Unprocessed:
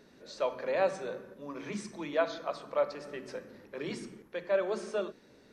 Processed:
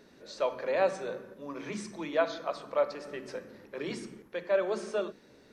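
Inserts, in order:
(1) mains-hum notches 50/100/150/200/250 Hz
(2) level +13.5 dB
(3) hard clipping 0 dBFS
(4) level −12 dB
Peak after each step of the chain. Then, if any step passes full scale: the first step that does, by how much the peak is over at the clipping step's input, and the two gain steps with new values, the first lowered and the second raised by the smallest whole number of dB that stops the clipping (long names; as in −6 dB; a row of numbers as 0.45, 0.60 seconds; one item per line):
−15.5, −2.0, −2.0, −14.0 dBFS
no step passes full scale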